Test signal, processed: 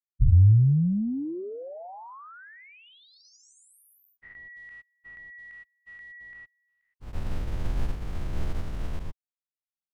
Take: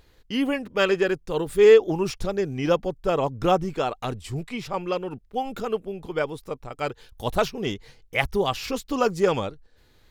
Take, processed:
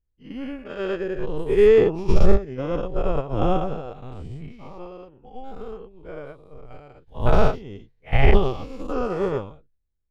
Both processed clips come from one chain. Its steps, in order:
every bin's largest magnitude spread in time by 240 ms
RIAA equalisation playback
expander for the loud parts 2.5 to 1, over −30 dBFS
level −2 dB

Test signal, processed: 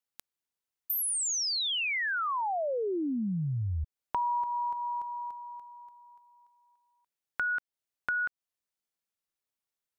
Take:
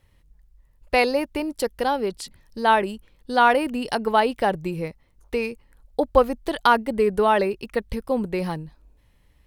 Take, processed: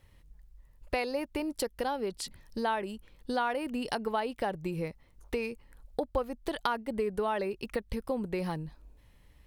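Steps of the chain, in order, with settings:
downward compressor 3 to 1, threshold −32 dBFS

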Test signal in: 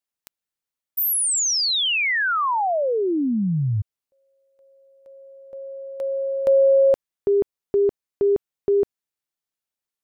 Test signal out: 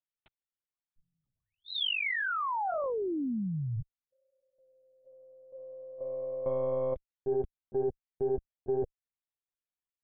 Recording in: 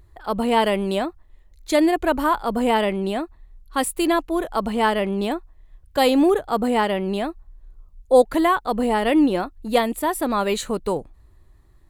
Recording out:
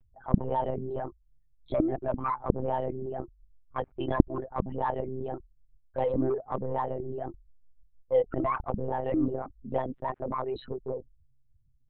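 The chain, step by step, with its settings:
spectral envelope exaggerated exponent 3
harmonic generator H 6 −31 dB, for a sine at −6 dBFS
one-pitch LPC vocoder at 8 kHz 130 Hz
level −10.5 dB

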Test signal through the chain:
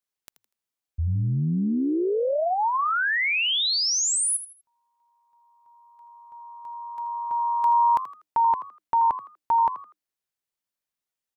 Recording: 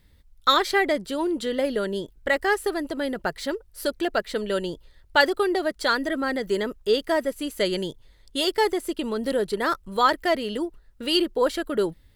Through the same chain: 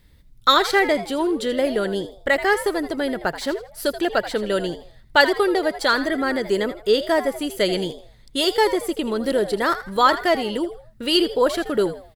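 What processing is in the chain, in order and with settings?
echo with shifted repeats 81 ms, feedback 31%, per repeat +99 Hz, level −13 dB
level +3.5 dB

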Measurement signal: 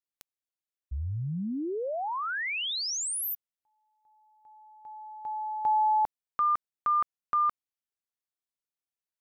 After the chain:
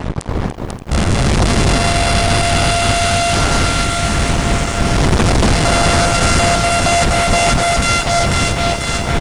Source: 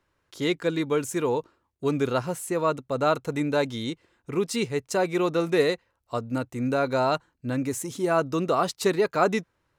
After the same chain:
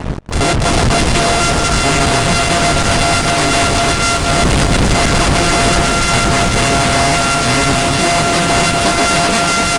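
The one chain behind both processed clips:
samples sorted by size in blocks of 64 samples
wind on the microphone 230 Hz −28 dBFS
parametric band 310 Hz −8.5 dB 2.4 octaves
on a send: delay that swaps between a low-pass and a high-pass 246 ms, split 1,300 Hz, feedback 76%, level −6 dB
on the sum: fuzz pedal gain 39 dB, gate −43 dBFS
downsampling to 22,050 Hz
high-shelf EQ 3,800 Hz +8 dB
slap from a distant wall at 28 metres, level −27 dB
harmonic and percussive parts rebalanced harmonic −5 dB
in parallel at +2 dB: brickwall limiter −19.5 dBFS
on the sum: feedback echo at a low word length 289 ms, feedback 80%, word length 7 bits, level −11 dB
level +1.5 dB

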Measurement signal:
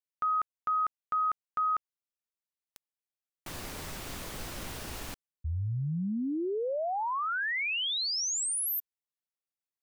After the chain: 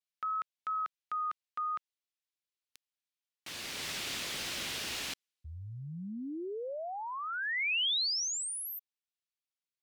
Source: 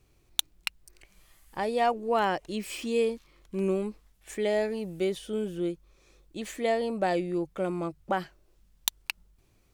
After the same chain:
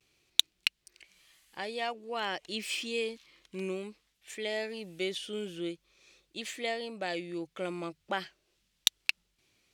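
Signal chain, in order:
pitch vibrato 0.51 Hz 38 cents
speech leveller within 5 dB 0.5 s
meter weighting curve D
level −7 dB

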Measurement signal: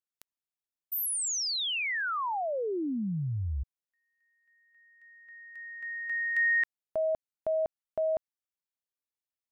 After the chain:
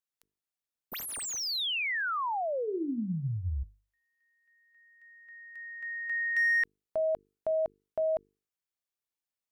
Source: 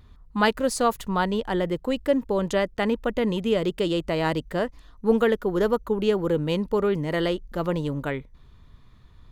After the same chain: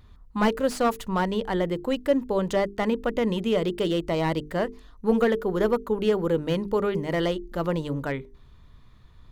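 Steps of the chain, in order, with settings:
mains-hum notches 50/100/150/200/250/300/350/400/450 Hz
slew-rate limiting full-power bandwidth 120 Hz

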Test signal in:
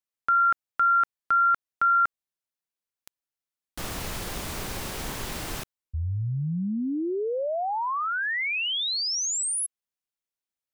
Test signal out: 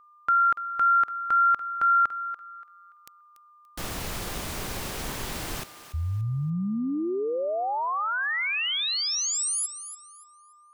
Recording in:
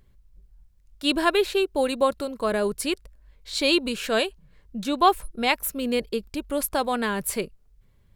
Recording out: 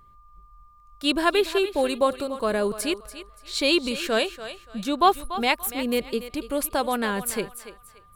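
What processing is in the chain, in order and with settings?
feedback echo with a high-pass in the loop 288 ms, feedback 29%, high-pass 410 Hz, level −12 dB
steady tone 1,200 Hz −53 dBFS

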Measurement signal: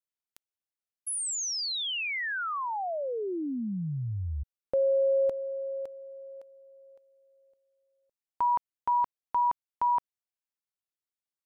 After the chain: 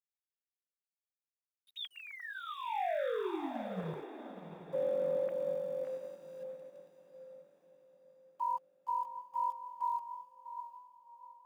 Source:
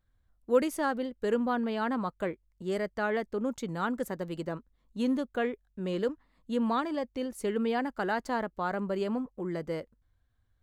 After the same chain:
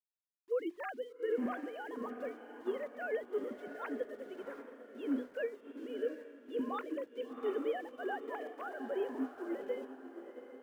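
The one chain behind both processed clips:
three sine waves on the formant tracks
mains-hum notches 50/100/150/200/250/300/350/400 Hz
brickwall limiter −23.5 dBFS
centre clipping without the shift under −52 dBFS
on a send: feedback delay with all-pass diffusion 728 ms, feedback 53%, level −6.5 dB
on the sum: expander for the loud parts 1.5 to 1, over −47 dBFS
level −3 dB

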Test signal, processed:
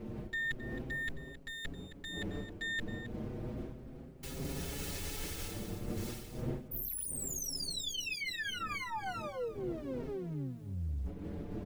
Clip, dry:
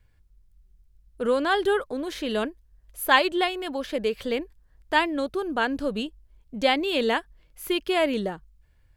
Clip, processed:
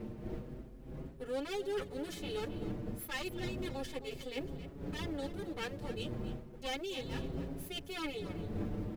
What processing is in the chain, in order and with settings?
lower of the sound and its delayed copy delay 2.3 ms
wind on the microphone 360 Hz −28 dBFS
parametric band 990 Hz −8 dB 1.6 octaves
reversed playback
downward compressor 10 to 1, threshold −36 dBFS
reversed playback
log-companded quantiser 8 bits
single-tap delay 267 ms −13.5 dB
barber-pole flanger 6.2 ms +0.33 Hz
level +2.5 dB

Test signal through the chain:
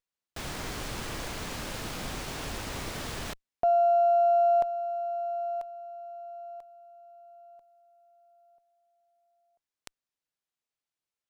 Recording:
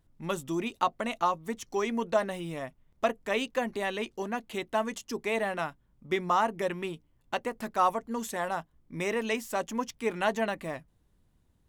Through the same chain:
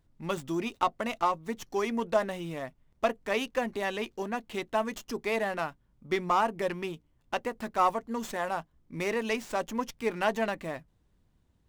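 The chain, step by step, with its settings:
windowed peak hold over 3 samples

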